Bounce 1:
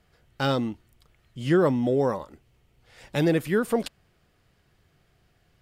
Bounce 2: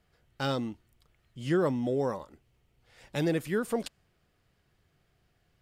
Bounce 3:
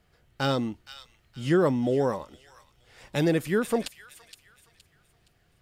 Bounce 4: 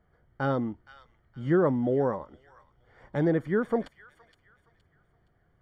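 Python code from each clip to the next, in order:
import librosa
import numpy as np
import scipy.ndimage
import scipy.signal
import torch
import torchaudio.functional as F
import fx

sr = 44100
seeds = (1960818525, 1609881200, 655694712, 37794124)

y1 = fx.dynamic_eq(x, sr, hz=7000.0, q=1.0, threshold_db=-53.0, ratio=4.0, max_db=4)
y1 = F.gain(torch.from_numpy(y1), -6.0).numpy()
y2 = fx.echo_wet_highpass(y1, sr, ms=468, feedback_pct=34, hz=2100.0, wet_db=-10.0)
y2 = F.gain(torch.from_numpy(y2), 4.5).numpy()
y3 = scipy.signal.savgol_filter(y2, 41, 4, mode='constant')
y3 = F.gain(torch.from_numpy(y3), -1.0).numpy()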